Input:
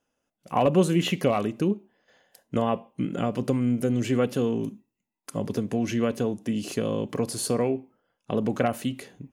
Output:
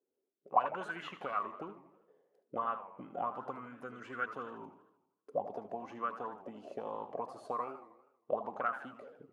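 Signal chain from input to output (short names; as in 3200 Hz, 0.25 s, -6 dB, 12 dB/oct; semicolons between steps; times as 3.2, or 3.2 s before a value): 2.58–5.46 low shelf 110 Hz +6 dB; auto-wah 390–1500 Hz, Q 11, up, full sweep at -18 dBFS; warbling echo 80 ms, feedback 55%, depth 206 cents, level -12 dB; gain +7.5 dB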